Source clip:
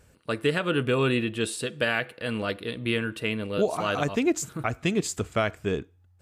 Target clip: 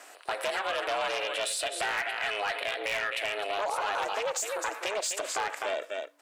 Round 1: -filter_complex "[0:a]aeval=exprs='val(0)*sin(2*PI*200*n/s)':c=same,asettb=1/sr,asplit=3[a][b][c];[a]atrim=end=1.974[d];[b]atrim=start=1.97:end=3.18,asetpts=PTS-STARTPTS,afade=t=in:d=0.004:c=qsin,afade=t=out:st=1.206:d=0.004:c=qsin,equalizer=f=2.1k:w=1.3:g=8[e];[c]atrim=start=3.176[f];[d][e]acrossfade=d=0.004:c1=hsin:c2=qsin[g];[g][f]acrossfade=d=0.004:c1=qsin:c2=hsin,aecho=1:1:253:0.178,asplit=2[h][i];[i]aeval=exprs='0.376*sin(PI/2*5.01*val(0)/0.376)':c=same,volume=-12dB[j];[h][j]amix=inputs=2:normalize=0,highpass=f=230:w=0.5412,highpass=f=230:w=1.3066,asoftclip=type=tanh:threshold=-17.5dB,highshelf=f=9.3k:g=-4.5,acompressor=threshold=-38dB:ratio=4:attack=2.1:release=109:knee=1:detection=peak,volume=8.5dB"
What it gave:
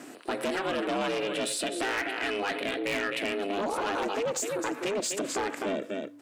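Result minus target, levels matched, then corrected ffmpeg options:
250 Hz band +17.0 dB
-filter_complex "[0:a]aeval=exprs='val(0)*sin(2*PI*200*n/s)':c=same,asettb=1/sr,asplit=3[a][b][c];[a]atrim=end=1.974[d];[b]atrim=start=1.97:end=3.18,asetpts=PTS-STARTPTS,afade=t=in:d=0.004:c=qsin,afade=t=out:st=1.206:d=0.004:c=qsin,equalizer=f=2.1k:w=1.3:g=8[e];[c]atrim=start=3.176[f];[d][e]acrossfade=d=0.004:c1=hsin:c2=qsin[g];[g][f]acrossfade=d=0.004:c1=qsin:c2=hsin,aecho=1:1:253:0.178,asplit=2[h][i];[i]aeval=exprs='0.376*sin(PI/2*5.01*val(0)/0.376)':c=same,volume=-12dB[j];[h][j]amix=inputs=2:normalize=0,highpass=f=580:w=0.5412,highpass=f=580:w=1.3066,asoftclip=type=tanh:threshold=-17.5dB,highshelf=f=9.3k:g=-4.5,acompressor=threshold=-38dB:ratio=4:attack=2.1:release=109:knee=1:detection=peak,volume=8.5dB"

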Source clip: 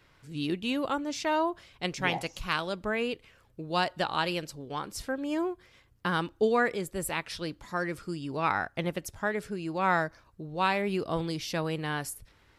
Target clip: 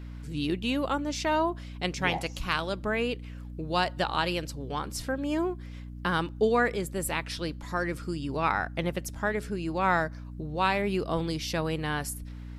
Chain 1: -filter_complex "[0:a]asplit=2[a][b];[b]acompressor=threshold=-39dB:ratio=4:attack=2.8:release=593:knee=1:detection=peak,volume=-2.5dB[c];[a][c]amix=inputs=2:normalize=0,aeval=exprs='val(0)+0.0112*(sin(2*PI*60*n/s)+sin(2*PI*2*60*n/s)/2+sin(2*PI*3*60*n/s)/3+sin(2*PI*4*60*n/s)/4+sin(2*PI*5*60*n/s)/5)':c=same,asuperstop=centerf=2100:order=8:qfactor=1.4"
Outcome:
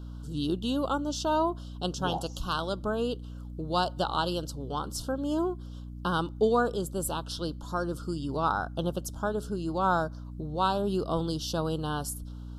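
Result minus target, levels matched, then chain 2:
2000 Hz band -7.0 dB
-filter_complex "[0:a]asplit=2[a][b];[b]acompressor=threshold=-39dB:ratio=4:attack=2.8:release=593:knee=1:detection=peak,volume=-2.5dB[c];[a][c]amix=inputs=2:normalize=0,aeval=exprs='val(0)+0.0112*(sin(2*PI*60*n/s)+sin(2*PI*2*60*n/s)/2+sin(2*PI*3*60*n/s)/3+sin(2*PI*4*60*n/s)/4+sin(2*PI*5*60*n/s)/5)':c=same"

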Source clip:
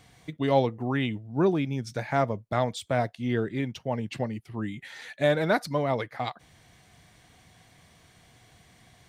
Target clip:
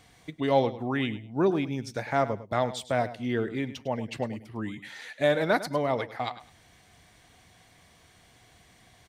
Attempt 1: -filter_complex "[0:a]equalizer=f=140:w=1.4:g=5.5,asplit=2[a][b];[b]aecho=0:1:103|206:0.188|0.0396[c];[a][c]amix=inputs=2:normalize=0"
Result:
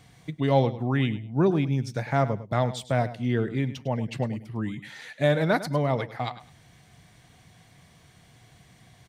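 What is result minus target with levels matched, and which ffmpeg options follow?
125 Hz band +7.0 dB
-filter_complex "[0:a]equalizer=f=140:w=1.4:g=-5,asplit=2[a][b];[b]aecho=0:1:103|206:0.188|0.0396[c];[a][c]amix=inputs=2:normalize=0"

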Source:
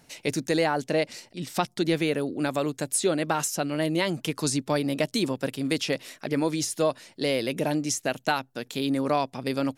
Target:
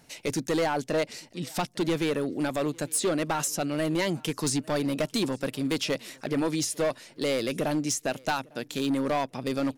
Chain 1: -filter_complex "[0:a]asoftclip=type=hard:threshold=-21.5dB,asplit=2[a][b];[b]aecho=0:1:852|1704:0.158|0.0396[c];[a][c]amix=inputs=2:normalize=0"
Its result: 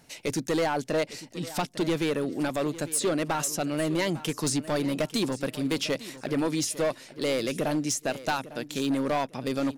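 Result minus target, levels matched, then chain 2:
echo-to-direct +10 dB
-filter_complex "[0:a]asoftclip=type=hard:threshold=-21.5dB,asplit=2[a][b];[b]aecho=0:1:852|1704:0.0501|0.0125[c];[a][c]amix=inputs=2:normalize=0"

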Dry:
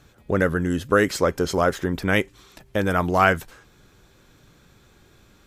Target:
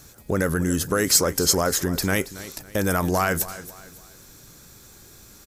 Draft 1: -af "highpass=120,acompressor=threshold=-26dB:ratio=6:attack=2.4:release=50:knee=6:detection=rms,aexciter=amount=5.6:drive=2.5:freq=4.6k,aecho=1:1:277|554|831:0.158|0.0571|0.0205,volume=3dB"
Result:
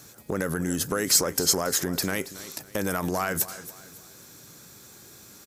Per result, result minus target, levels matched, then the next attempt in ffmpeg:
compressor: peak gain reduction +6 dB; 125 Hz band -3.5 dB
-af "highpass=120,acompressor=threshold=-20dB:ratio=6:attack=2.4:release=50:knee=6:detection=rms,aexciter=amount=5.6:drive=2.5:freq=4.6k,aecho=1:1:277|554|831:0.158|0.0571|0.0205,volume=3dB"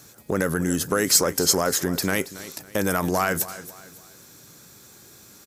125 Hz band -3.0 dB
-af "acompressor=threshold=-20dB:ratio=6:attack=2.4:release=50:knee=6:detection=rms,aexciter=amount=5.6:drive=2.5:freq=4.6k,aecho=1:1:277|554|831:0.158|0.0571|0.0205,volume=3dB"

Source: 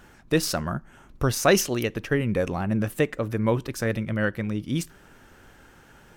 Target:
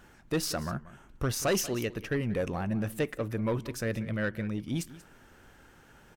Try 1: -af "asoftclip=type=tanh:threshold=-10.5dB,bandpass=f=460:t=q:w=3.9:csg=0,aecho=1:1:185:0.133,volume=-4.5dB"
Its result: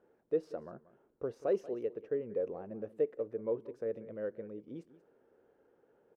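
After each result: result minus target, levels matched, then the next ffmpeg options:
soft clip: distortion -8 dB; 500 Hz band +5.0 dB
-af "asoftclip=type=tanh:threshold=-17dB,bandpass=f=460:t=q:w=3.9:csg=0,aecho=1:1:185:0.133,volume=-4.5dB"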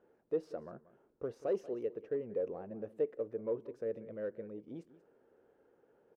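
500 Hz band +5.0 dB
-af "asoftclip=type=tanh:threshold=-17dB,aecho=1:1:185:0.133,volume=-4.5dB"

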